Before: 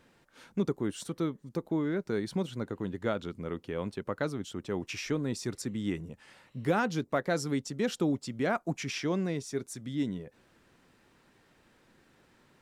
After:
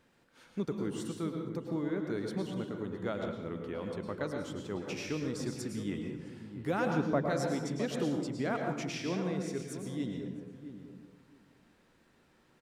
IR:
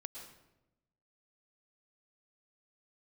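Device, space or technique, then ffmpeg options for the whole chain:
bathroom: -filter_complex "[0:a]asettb=1/sr,asplit=3[s0][s1][s2];[s0]atrim=end=6.874[s3];[s1]atrim=start=6.87:end=7.27,asetpts=PTS-STARTPTS,afade=t=in:d=0.004:c=qsin,afade=t=out:st=0.396:d=0.004:c=qsin,tiltshelf=f=1300:g=7[s4];[s2]atrim=start=7.266[s5];[s3][s4]acrossfade=d=0.004:c1=hsin:c2=qsin[s6];[s6][s5]acrossfade=d=0.004:c1=qsin:c2=hsin,asplit=2[s7][s8];[s8]adelay=663,lowpass=f=980:p=1,volume=0.316,asplit=2[s9][s10];[s10]adelay=663,lowpass=f=980:p=1,volume=0.17[s11];[s7][s9][s11]amix=inputs=3:normalize=0[s12];[1:a]atrim=start_sample=2205[s13];[s12][s13]afir=irnorm=-1:irlink=0"

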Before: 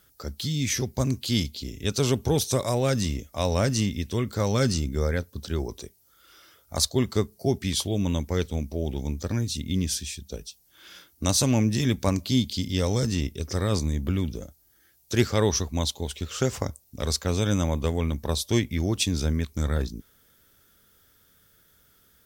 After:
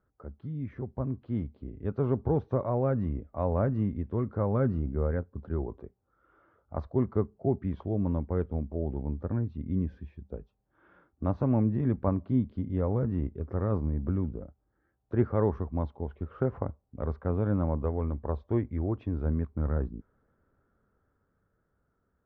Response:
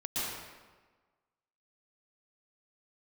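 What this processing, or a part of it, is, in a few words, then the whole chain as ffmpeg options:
action camera in a waterproof case: -filter_complex "[0:a]asettb=1/sr,asplit=3[s0][s1][s2];[s0]atrim=end=17.834[s3];[s1]atrim=start=17.83:end=19.26,asetpts=PTS-STARTPTS,afade=t=in:d=0.004:c=qsin,afade=t=out:st=1.426:d=0.004:c=qsin,equalizer=f=180:w=1.9:g=-5.5[s4];[s2]atrim=start=19.256[s5];[s3][s4]acrossfade=d=0.004:c1=hsin:c2=qsin[s6];[s6][s5]acrossfade=d=0.004:c1=qsin:c2=hsin,lowpass=f=1300:w=0.5412,lowpass=f=1300:w=1.3066,dynaudnorm=f=240:g=13:m=1.78,volume=0.398" -ar 48000 -c:a aac -b:a 128k

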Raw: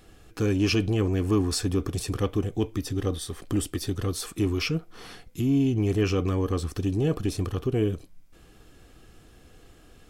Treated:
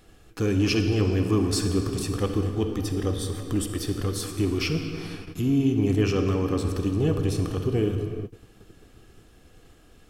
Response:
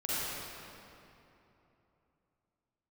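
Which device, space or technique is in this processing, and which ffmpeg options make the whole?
keyed gated reverb: -filter_complex "[0:a]asplit=3[s0][s1][s2];[1:a]atrim=start_sample=2205[s3];[s1][s3]afir=irnorm=-1:irlink=0[s4];[s2]apad=whole_len=445377[s5];[s4][s5]sidechaingate=range=0.0224:threshold=0.00398:ratio=16:detection=peak,volume=0.299[s6];[s0][s6]amix=inputs=2:normalize=0,volume=0.841"

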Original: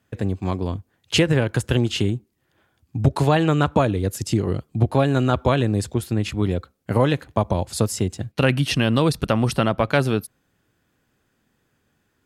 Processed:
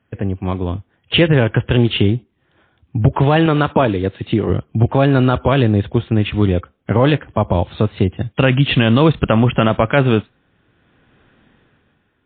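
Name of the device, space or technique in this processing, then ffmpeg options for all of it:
low-bitrate web radio: -filter_complex "[0:a]asettb=1/sr,asplit=3[s0][s1][s2];[s0]atrim=end=3.464[s3];[s1]atrim=start=3.46:end=4.5,asetpts=PTS-STARTPTS,afade=t=in:d=0.004:c=qsin,afade=t=out:st=1.036:d=0.004:c=qsin,highpass=f=180:p=1[s4];[s2]atrim=start=4.496[s5];[s3][s4]acrossfade=d=0.004:c1=hsin:c2=qsin[s6];[s6][s5]acrossfade=d=0.004:c1=qsin:c2=hsin,dynaudnorm=f=160:g=11:m=5.96,alimiter=limit=0.562:level=0:latency=1:release=27,volume=1.5" -ar 8000 -c:a libmp3lame -b:a 24k

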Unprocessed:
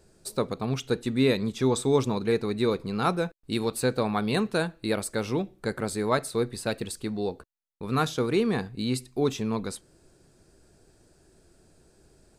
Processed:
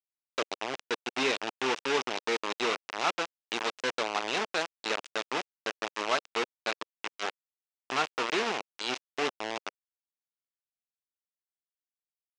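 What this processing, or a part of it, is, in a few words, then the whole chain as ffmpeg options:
hand-held game console: -af "acrusher=bits=3:mix=0:aa=0.000001,highpass=450,equalizer=f=510:t=q:w=4:g=-4,equalizer=f=2700:t=q:w=4:g=4,equalizer=f=4300:t=q:w=4:g=-3,lowpass=f=6000:w=0.5412,lowpass=f=6000:w=1.3066,volume=0.75"

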